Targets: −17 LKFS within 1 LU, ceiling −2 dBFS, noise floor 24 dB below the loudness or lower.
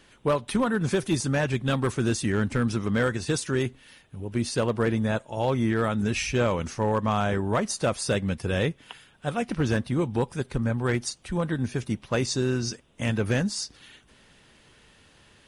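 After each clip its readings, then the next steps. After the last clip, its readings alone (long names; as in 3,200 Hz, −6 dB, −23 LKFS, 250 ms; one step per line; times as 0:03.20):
share of clipped samples 0.6%; peaks flattened at −16.5 dBFS; integrated loudness −27.0 LKFS; sample peak −16.5 dBFS; target loudness −17.0 LKFS
→ clipped peaks rebuilt −16.5 dBFS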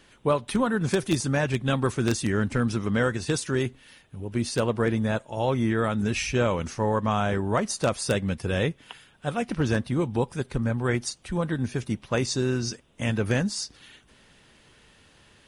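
share of clipped samples 0.0%; integrated loudness −26.5 LKFS; sample peak −7.5 dBFS; target loudness −17.0 LKFS
→ level +9.5 dB
brickwall limiter −2 dBFS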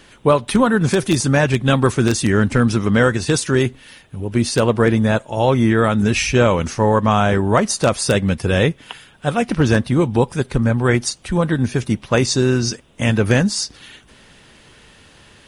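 integrated loudness −17.5 LKFS; sample peak −2.0 dBFS; background noise floor −48 dBFS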